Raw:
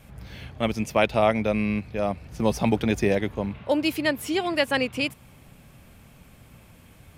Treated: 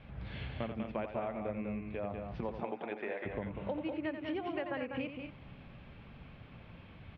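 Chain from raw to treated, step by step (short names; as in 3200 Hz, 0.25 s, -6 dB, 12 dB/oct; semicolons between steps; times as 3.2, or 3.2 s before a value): inverse Chebyshev low-pass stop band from 6900 Hz, stop band 40 dB; treble ducked by the level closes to 1700 Hz, closed at -22.5 dBFS; 2.4–3.25 HPF 290 Hz -> 910 Hz 12 dB/oct; compressor 6:1, threshold -33 dBFS, peak gain reduction 16.5 dB; loudspeakers at several distances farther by 30 m -9 dB, 67 m -6 dB, 79 m -12 dB; gain -3 dB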